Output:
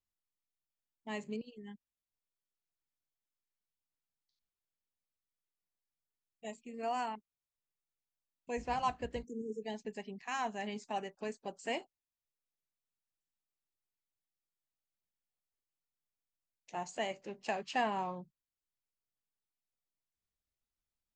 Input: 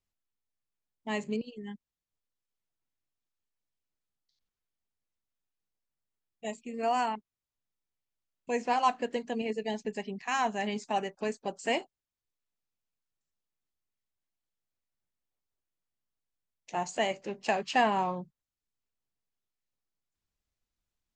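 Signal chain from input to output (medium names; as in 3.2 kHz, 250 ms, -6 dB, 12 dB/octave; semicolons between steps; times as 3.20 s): 8.57–9.24 s: octave divider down 2 oct, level -2 dB; 9.26–9.63 s: spectral selection erased 490–5300 Hz; trim -7.5 dB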